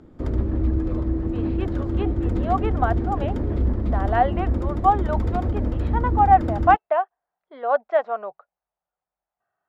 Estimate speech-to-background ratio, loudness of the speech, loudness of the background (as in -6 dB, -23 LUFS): 2.5 dB, -23.0 LUFS, -25.5 LUFS